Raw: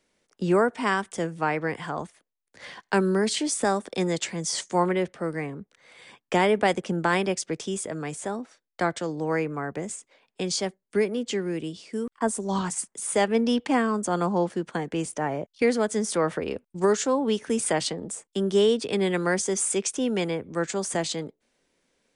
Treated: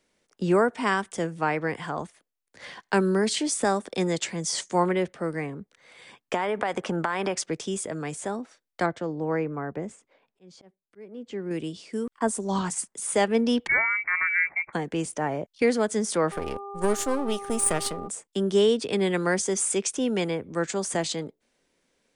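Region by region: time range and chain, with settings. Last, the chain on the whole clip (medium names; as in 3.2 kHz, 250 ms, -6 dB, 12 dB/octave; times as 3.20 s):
6.34–7.46 s: peaking EQ 1.1 kHz +11.5 dB 2.2 oct + compression 12:1, threshold -22 dBFS
8.86–11.51 s: low-pass 1.3 kHz 6 dB/octave + slow attack 742 ms
13.67–14.73 s: distance through air 190 m + frequency inversion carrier 2.5 kHz
16.31–18.07 s: partial rectifier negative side -12 dB + peaking EQ 9.3 kHz +13 dB 0.29 oct + mains buzz 400 Hz, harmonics 3, -38 dBFS -1 dB/octave
whole clip: none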